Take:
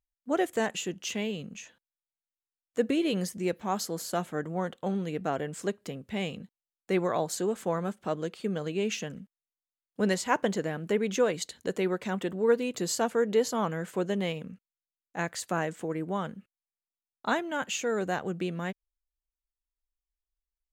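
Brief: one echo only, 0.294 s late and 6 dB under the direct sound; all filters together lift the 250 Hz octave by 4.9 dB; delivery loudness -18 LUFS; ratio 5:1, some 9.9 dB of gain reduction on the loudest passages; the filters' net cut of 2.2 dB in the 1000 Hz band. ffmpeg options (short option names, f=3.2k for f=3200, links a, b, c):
-af "equalizer=f=250:t=o:g=7,equalizer=f=1k:t=o:g=-3.5,acompressor=threshold=-29dB:ratio=5,aecho=1:1:294:0.501,volume=15.5dB"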